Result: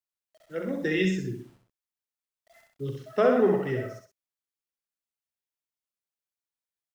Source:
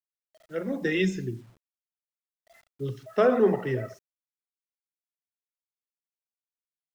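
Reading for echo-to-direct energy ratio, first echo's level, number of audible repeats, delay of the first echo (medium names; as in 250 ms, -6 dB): -4.0 dB, -5.0 dB, 2, 64 ms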